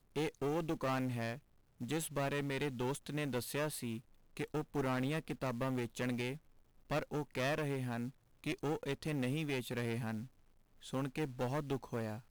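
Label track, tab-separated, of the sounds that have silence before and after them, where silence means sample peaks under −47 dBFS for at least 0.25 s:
1.810000	3.990000	sound
4.370000	6.370000	sound
6.900000	8.100000	sound
8.440000	10.260000	sound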